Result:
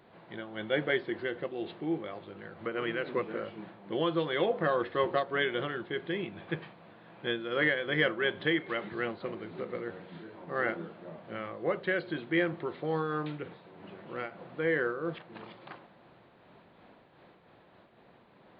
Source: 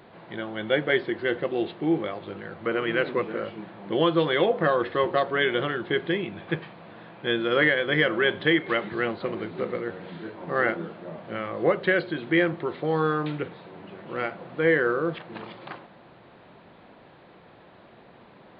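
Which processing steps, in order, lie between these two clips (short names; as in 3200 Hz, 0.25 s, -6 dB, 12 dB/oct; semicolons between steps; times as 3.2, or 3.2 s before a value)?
noise-modulated level, depth 60%; gain -4 dB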